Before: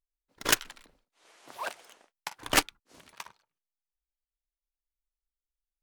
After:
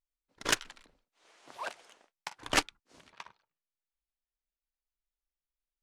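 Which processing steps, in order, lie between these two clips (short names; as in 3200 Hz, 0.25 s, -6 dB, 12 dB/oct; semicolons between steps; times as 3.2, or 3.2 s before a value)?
LPF 8500 Hz 12 dB/oct, from 3.09 s 4300 Hz; gain -3 dB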